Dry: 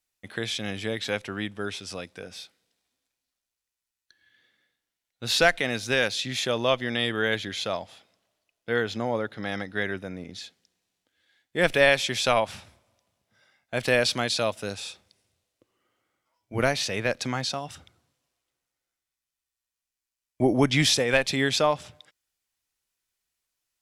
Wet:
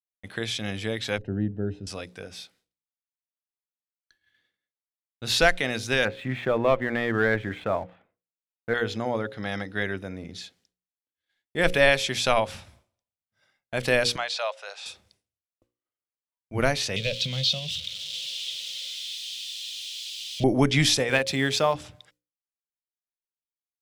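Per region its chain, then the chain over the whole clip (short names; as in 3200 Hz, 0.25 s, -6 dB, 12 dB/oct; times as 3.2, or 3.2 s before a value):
1.18–1.87 running mean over 39 samples + low shelf 390 Hz +8 dB
6.05–8.74 LPF 2100 Hz 24 dB/oct + sample leveller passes 1
14.16–14.86 steep high-pass 590 Hz + air absorption 100 m
16.96–20.44 switching spikes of -22.5 dBFS + EQ curve 110 Hz 0 dB, 180 Hz +6 dB, 310 Hz -20 dB, 530 Hz +1 dB, 790 Hz -20 dB, 1600 Hz -17 dB, 3300 Hz +13 dB, 4900 Hz 0 dB, 7500 Hz -12 dB, 14000 Hz -28 dB
21.09–21.75 G.711 law mismatch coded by A + HPF 71 Hz
whole clip: expander -58 dBFS; low shelf 71 Hz +11.5 dB; notches 60/120/180/240/300/360/420/480/540 Hz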